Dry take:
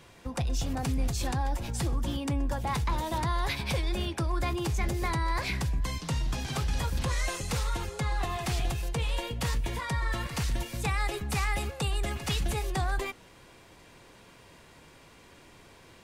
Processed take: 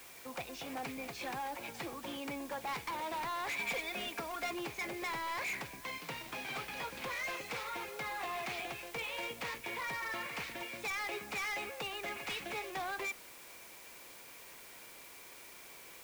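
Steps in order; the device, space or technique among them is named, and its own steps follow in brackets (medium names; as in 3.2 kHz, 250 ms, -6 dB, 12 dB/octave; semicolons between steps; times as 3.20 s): drive-through speaker (band-pass 380–3300 Hz; peaking EQ 2.3 kHz +10 dB 0.27 oct; hard clipper -32.5 dBFS, distortion -9 dB; white noise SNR 13 dB); 3.58–4.51 s: comb 4.3 ms, depth 68%; trim -3 dB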